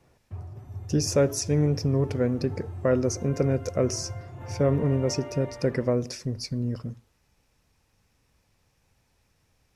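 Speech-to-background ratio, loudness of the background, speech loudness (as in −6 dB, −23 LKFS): 13.0 dB, −39.5 LKFS, −26.5 LKFS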